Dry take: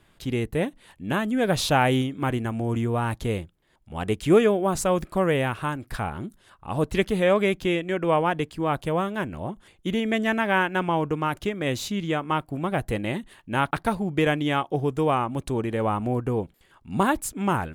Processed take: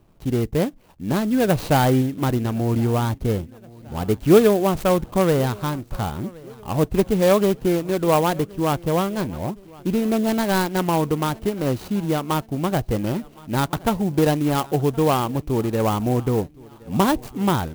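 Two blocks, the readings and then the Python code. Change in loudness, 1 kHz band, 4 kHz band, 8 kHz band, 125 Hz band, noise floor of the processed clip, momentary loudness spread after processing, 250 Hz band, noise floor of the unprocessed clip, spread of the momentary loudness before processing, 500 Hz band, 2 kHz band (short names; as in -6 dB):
+3.5 dB, +2.0 dB, +1.0 dB, +3.5 dB, +5.5 dB, -47 dBFS, 10 LU, +5.0 dB, -61 dBFS, 10 LU, +4.0 dB, -3.0 dB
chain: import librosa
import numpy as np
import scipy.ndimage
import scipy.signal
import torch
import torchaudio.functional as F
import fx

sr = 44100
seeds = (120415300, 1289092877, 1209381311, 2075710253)

y = scipy.ndimage.median_filter(x, 25, mode='constant')
y = fx.bass_treble(y, sr, bass_db=1, treble_db=7)
y = fx.echo_feedback(y, sr, ms=1069, feedback_pct=47, wet_db=-23)
y = fx.clock_jitter(y, sr, seeds[0], jitter_ms=0.031)
y = y * librosa.db_to_amplitude(4.5)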